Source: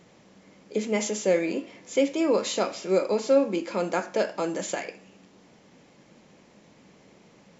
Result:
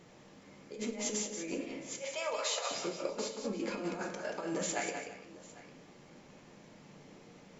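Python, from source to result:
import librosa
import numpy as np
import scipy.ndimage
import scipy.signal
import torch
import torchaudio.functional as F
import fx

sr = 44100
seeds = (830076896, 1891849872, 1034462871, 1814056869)

y = fx.steep_highpass(x, sr, hz=580.0, slope=36, at=(1.99, 2.71))
y = fx.over_compress(y, sr, threshold_db=-31.0, ratio=-0.5)
y = fx.echo_multitap(y, sr, ms=(104, 181, 336, 800), db=(-17.5, -7.0, -16.5, -19.5))
y = fx.room_shoebox(y, sr, seeds[0], volume_m3=53.0, walls='mixed', distance_m=0.37)
y = y * librosa.db_to_amplitude(-8.0)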